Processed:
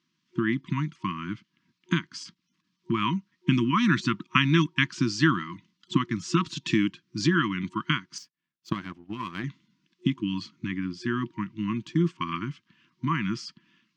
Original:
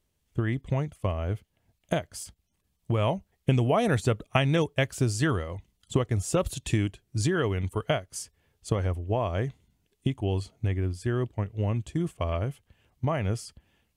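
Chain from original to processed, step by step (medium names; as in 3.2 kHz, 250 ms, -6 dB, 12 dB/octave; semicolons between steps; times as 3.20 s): FFT band-reject 360–940 Hz; elliptic band-pass 170–5400 Hz, stop band 40 dB; 8.18–9.44 s: power-law waveshaper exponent 1.4; trim +6.5 dB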